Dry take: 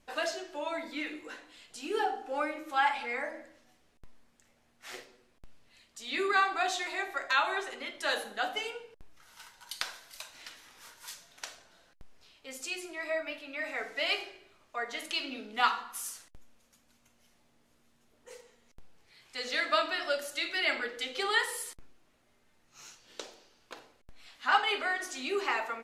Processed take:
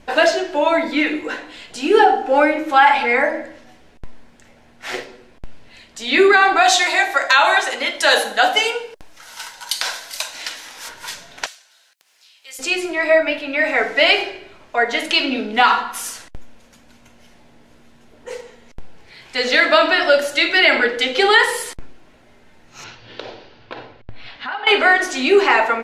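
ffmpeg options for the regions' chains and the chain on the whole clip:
-filter_complex "[0:a]asettb=1/sr,asplit=3[s0][s1][s2];[s0]atrim=end=6.624[s3];[s1]atrim=start=6.62:end=10.89,asetpts=PTS-STARTPTS,afade=t=in:d=0.004:c=qsin,afade=t=out:st=4.266:d=0.004:c=qsin,bass=f=250:g=-11,treble=f=4000:g=9,bandreject=f=390:w=5.6[s4];[s2]atrim=start=10.886[s5];[s3][s4]acrossfade=d=0.004:c1=hsin:c2=qsin[s6];[s6][s5]acrossfade=d=0.004:c1=qsin:c2=hsin,asettb=1/sr,asplit=3[s7][s8][s9];[s7]atrim=end=11.464[s10];[s8]atrim=start=11.46:end=12.59,asetpts=PTS-STARTPTS,afade=t=in:d=0.004:c=qsin,afade=t=out:st=1.126:d=0.004:c=qsin,highpass=f=560:p=1,acompressor=mode=upward:threshold=0.00126:ratio=2.5:attack=3.2:release=140:knee=2.83:detection=peak,aderivative[s11];[s9]atrim=start=12.586[s12];[s10][s11]acrossfade=d=0.004:c1=hsin:c2=qsin[s13];[s13][s12]acrossfade=d=0.004:c1=qsin:c2=hsin,asettb=1/sr,asplit=3[s14][s15][s16];[s14]atrim=end=22.844[s17];[s15]atrim=start=22.84:end=24.67,asetpts=PTS-STARTPTS,afade=t=in:d=0.004:c=qsin,afade=t=out:st=1.826:d=0.004:c=qsin,lowpass=f=4500:w=0.5412,lowpass=f=4500:w=1.3066,equalizer=f=110:t=o:w=0.31:g=14,acompressor=threshold=0.00562:ratio=4:attack=3.2:release=140:knee=1:detection=peak[s18];[s16]atrim=start=24.666[s19];[s17][s18]acrossfade=d=0.004:c1=hsin:c2=qsin[s20];[s20][s19]acrossfade=d=0.004:c1=qsin:c2=hsin,lowpass=f=2800:p=1,bandreject=f=1200:w=9,alimiter=level_in=11.9:limit=0.891:release=50:level=0:latency=1,volume=0.841"

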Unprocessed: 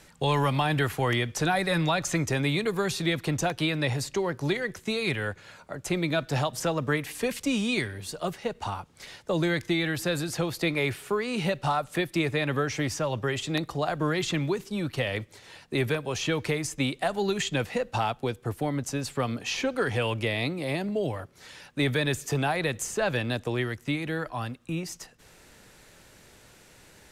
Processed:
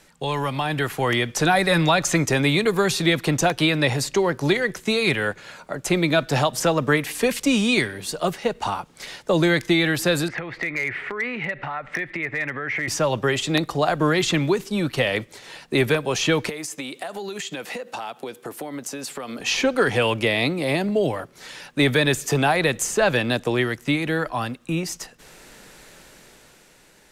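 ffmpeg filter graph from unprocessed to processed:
-filter_complex "[0:a]asettb=1/sr,asplit=3[s0][s1][s2];[s0]atrim=end=10.284[s3];[s1]atrim=start=10.28:end=12.88,asetpts=PTS-STARTPTS,afade=t=in:d=0.004:c=qsin,afade=t=out:st=2.596:d=0.004:c=qsin,acompressor=threshold=0.0178:ratio=20:attack=3.2:release=140:knee=1:detection=peak,lowpass=f=2000:t=q:w=6.5,asoftclip=type=hard:threshold=0.0501[s4];[s2]atrim=start=12.876[s5];[s3][s4]acrossfade=d=0.004:c1=hsin:c2=qsin[s6];[s6][s5]acrossfade=d=0.004:c1=qsin:c2=hsin,asettb=1/sr,asplit=3[s7][s8][s9];[s7]atrim=end=16.494[s10];[s8]atrim=start=16.49:end=19.4,asetpts=PTS-STARTPTS,afade=t=in:d=0.004:c=qsin,afade=t=out:st=2.906:d=0.004:c=qsin,highpass=240,highshelf=f=9600:g=6,acompressor=threshold=0.0178:ratio=16:attack=3.2:release=140:knee=1:detection=peak[s11];[s9]atrim=start=19.396[s12];[s10][s11]acrossfade=d=0.004:c1=hsin:c2=qsin[s13];[s13][s12]acrossfade=d=0.004:c1=qsin:c2=hsin,equalizer=f=85:w=2.1:g=-15,dynaudnorm=f=160:g=13:m=2.51"

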